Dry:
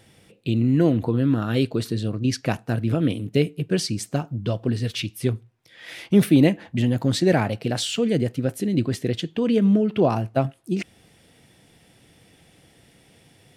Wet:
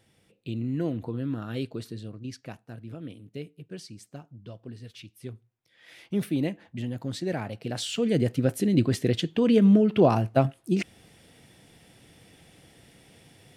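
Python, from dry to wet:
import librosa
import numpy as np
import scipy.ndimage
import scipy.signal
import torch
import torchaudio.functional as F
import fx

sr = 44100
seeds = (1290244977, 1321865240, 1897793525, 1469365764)

y = fx.gain(x, sr, db=fx.line((1.72, -10.5), (2.63, -18.0), (4.98, -18.0), (6.08, -11.5), (7.39, -11.5), (8.34, 0.0)))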